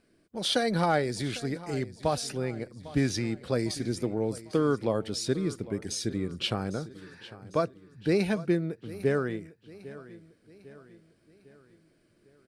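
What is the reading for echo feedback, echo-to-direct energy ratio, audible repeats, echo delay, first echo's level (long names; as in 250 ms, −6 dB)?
48%, −16.5 dB, 3, 801 ms, −17.5 dB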